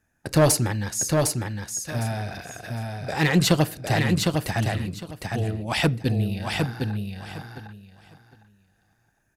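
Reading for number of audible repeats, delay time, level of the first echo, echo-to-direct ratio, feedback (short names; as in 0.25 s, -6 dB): 3, 0.757 s, -4.0 dB, -4.0 dB, 19%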